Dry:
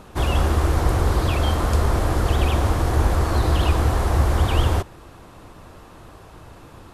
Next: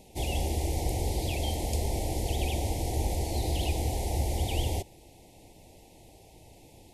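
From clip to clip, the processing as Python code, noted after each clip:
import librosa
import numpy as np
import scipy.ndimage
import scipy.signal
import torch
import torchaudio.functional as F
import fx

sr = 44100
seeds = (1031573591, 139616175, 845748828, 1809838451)

y = scipy.signal.sosfilt(scipy.signal.cheby1(3, 1.0, [840.0, 2100.0], 'bandstop', fs=sr, output='sos'), x)
y = fx.bass_treble(y, sr, bass_db=-3, treble_db=7)
y = F.gain(torch.from_numpy(y), -8.0).numpy()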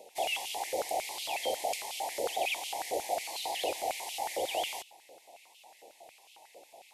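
y = fx.filter_held_highpass(x, sr, hz=11.0, low_hz=530.0, high_hz=2900.0)
y = F.gain(torch.from_numpy(y), -1.0).numpy()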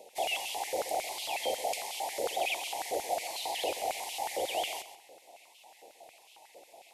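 y = fx.echo_feedback(x, sr, ms=129, feedback_pct=24, wet_db=-12)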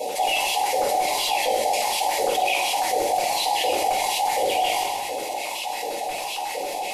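y = fx.room_shoebox(x, sr, seeds[0], volume_m3=260.0, walls='furnished', distance_m=5.6)
y = fx.env_flatten(y, sr, amount_pct=70)
y = F.gain(torch.from_numpy(y), -4.0).numpy()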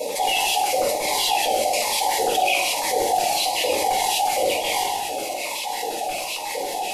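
y = fx.notch_cascade(x, sr, direction='falling', hz=1.1)
y = F.gain(torch.from_numpy(y), 3.5).numpy()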